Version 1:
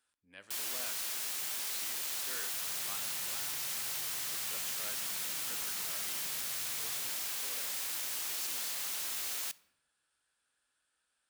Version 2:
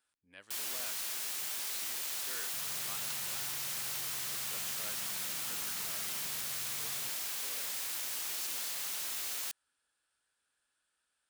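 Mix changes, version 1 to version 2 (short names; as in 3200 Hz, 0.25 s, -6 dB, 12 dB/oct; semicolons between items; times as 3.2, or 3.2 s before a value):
second sound +5.0 dB; reverb: off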